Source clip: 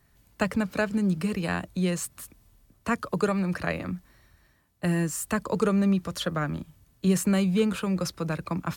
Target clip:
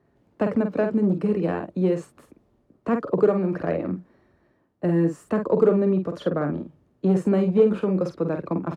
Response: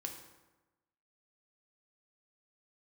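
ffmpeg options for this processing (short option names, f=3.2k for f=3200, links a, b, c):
-filter_complex "[0:a]asplit=2[a][b];[b]adelay=48,volume=-7dB[c];[a][c]amix=inputs=2:normalize=0,asplit=2[d][e];[e]aeval=exprs='0.106*(abs(mod(val(0)/0.106+3,4)-2)-1)':c=same,volume=-3.5dB[f];[d][f]amix=inputs=2:normalize=0,bandpass=f=390:t=q:w=1.4:csg=0,volume=5.5dB"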